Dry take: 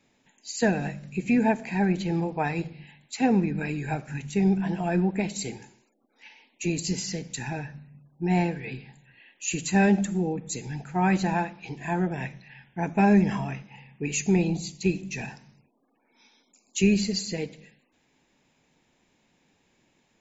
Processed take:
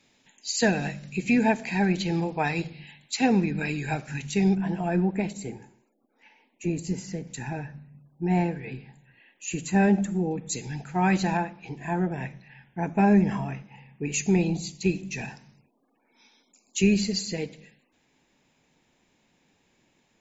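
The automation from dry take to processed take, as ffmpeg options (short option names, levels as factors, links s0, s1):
-af "asetnsamples=n=441:p=0,asendcmd='4.55 equalizer g -4;5.33 equalizer g -13;7.27 equalizer g -6.5;10.31 equalizer g 3;11.37 equalizer g -5.5;14.14 equalizer g 0.5',equalizer=f=4400:t=o:w=2:g=7.5"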